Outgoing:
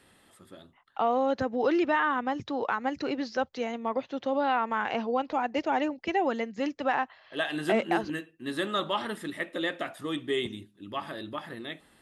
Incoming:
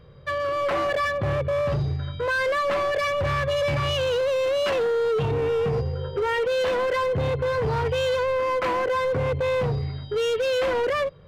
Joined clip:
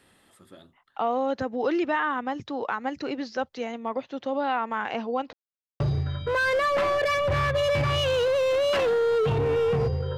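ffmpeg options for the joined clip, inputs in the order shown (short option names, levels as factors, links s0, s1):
-filter_complex "[0:a]apad=whole_dur=10.17,atrim=end=10.17,asplit=2[s0][s1];[s0]atrim=end=5.33,asetpts=PTS-STARTPTS,afade=t=out:st=5.326:d=0.004:c=hsin[s2];[s1]atrim=start=5.33:end=5.8,asetpts=PTS-STARTPTS,volume=0[s3];[1:a]atrim=start=1.73:end=6.1,asetpts=PTS-STARTPTS,afade=t=in:d=0.004:c=hsin[s4];[s2][s3][s4]concat=n=3:v=0:a=1"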